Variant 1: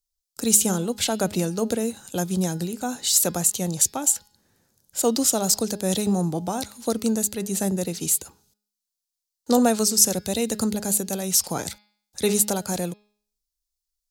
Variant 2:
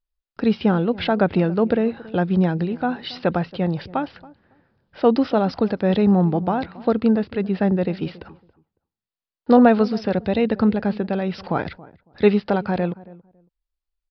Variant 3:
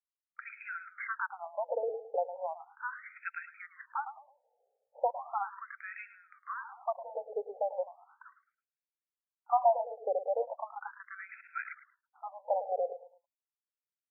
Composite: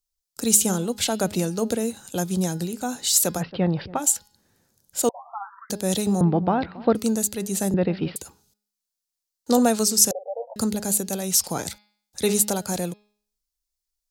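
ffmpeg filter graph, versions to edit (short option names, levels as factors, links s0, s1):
-filter_complex "[1:a]asplit=3[s0][s1][s2];[2:a]asplit=2[s3][s4];[0:a]asplit=6[s5][s6][s7][s8][s9][s10];[s5]atrim=end=3.43[s11];[s0]atrim=start=3.37:end=4.01[s12];[s6]atrim=start=3.95:end=5.092[s13];[s3]atrim=start=5.088:end=5.702[s14];[s7]atrim=start=5.698:end=6.212[s15];[s1]atrim=start=6.208:end=6.952[s16];[s8]atrim=start=6.948:end=7.742[s17];[s2]atrim=start=7.738:end=8.162[s18];[s9]atrim=start=8.158:end=10.112[s19];[s4]atrim=start=10.108:end=10.562[s20];[s10]atrim=start=10.558[s21];[s11][s12]acrossfade=d=0.06:c1=tri:c2=tri[s22];[s22][s13]acrossfade=d=0.06:c1=tri:c2=tri[s23];[s23][s14]acrossfade=d=0.004:c1=hsin:c2=hsin[s24];[s24][s15]acrossfade=d=0.004:c1=hsin:c2=hsin[s25];[s25][s16]acrossfade=d=0.004:c1=hsin:c2=hsin[s26];[s26][s17]acrossfade=d=0.004:c1=hsin:c2=hsin[s27];[s27][s18]acrossfade=d=0.004:c1=hsin:c2=hsin[s28];[s28][s19]acrossfade=d=0.004:c1=hsin:c2=hsin[s29];[s29][s20]acrossfade=d=0.004:c1=hsin:c2=hsin[s30];[s30][s21]acrossfade=d=0.004:c1=hsin:c2=hsin"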